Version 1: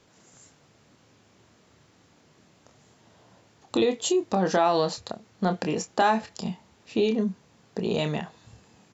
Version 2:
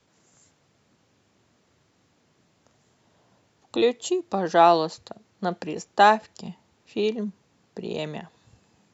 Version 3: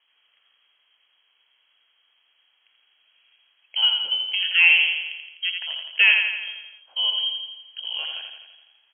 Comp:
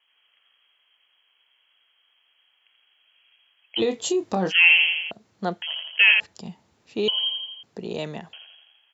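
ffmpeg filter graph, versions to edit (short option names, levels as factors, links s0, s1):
-filter_complex "[1:a]asplit=3[s0][s1][s2];[2:a]asplit=5[s3][s4][s5][s6][s7];[s3]atrim=end=3.81[s8];[0:a]atrim=start=3.77:end=4.53[s9];[s4]atrim=start=4.49:end=5.112[s10];[s0]atrim=start=5.108:end=5.622[s11];[s5]atrim=start=5.618:end=6.202[s12];[s1]atrim=start=6.198:end=7.082[s13];[s6]atrim=start=7.078:end=7.632[s14];[s2]atrim=start=7.628:end=8.332[s15];[s7]atrim=start=8.328[s16];[s8][s9]acrossfade=d=0.04:c1=tri:c2=tri[s17];[s17][s10]acrossfade=d=0.04:c1=tri:c2=tri[s18];[s18][s11]acrossfade=d=0.004:c1=hsin:c2=hsin[s19];[s19][s12]acrossfade=d=0.004:c1=hsin:c2=hsin[s20];[s20][s13]acrossfade=d=0.004:c1=hsin:c2=hsin[s21];[s21][s14]acrossfade=d=0.004:c1=hsin:c2=hsin[s22];[s22][s15]acrossfade=d=0.004:c1=hsin:c2=hsin[s23];[s23][s16]acrossfade=d=0.004:c1=hsin:c2=hsin"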